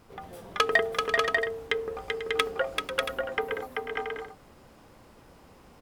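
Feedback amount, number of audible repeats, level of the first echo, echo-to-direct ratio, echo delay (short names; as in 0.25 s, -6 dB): no steady repeat, 4, -4.0 dB, 0.0 dB, 0.386 s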